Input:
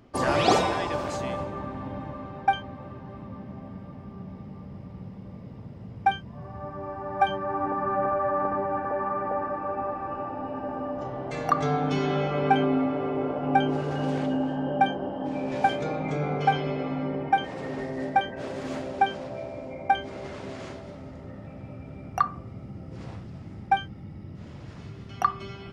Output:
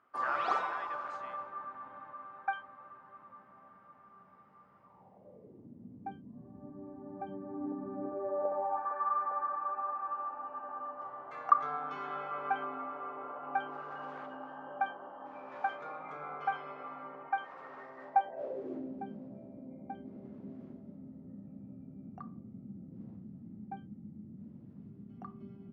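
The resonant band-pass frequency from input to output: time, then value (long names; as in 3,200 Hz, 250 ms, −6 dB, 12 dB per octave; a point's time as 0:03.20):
resonant band-pass, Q 4
0:04.79 1,300 Hz
0:05.74 260 Hz
0:07.97 260 Hz
0:08.93 1,200 Hz
0:18.03 1,200 Hz
0:18.98 220 Hz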